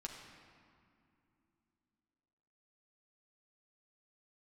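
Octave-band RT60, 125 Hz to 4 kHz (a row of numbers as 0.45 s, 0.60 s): 3.3 s, 3.9 s, 2.8 s, 2.5 s, 2.1 s, 1.4 s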